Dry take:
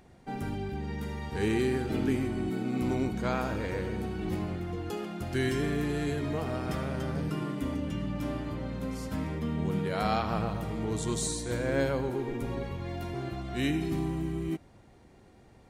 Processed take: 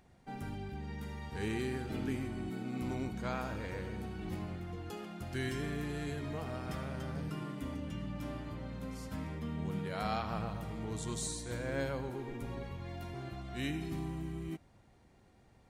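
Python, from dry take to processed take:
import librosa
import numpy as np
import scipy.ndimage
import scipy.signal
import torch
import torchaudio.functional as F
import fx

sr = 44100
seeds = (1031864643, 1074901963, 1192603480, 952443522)

y = fx.peak_eq(x, sr, hz=370.0, db=-4.0, octaves=1.2)
y = y * librosa.db_to_amplitude(-6.0)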